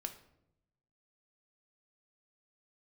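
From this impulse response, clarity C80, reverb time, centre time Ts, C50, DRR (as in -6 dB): 15.0 dB, 0.80 s, 10 ms, 12.0 dB, 6.0 dB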